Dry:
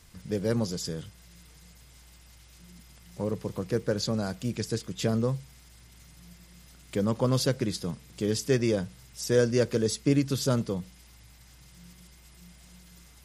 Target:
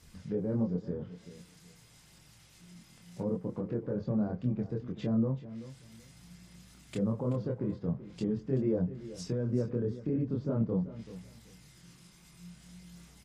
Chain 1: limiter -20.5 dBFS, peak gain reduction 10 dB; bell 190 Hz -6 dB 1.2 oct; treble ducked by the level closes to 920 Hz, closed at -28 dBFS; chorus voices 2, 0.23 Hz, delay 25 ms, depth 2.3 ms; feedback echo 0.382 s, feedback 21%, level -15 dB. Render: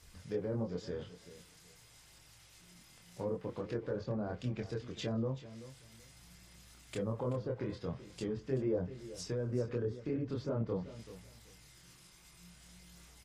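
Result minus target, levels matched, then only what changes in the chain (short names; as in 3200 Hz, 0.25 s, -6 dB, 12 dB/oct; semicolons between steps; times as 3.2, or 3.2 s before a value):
250 Hz band -2.5 dB
change: bell 190 Hz +4.5 dB 1.2 oct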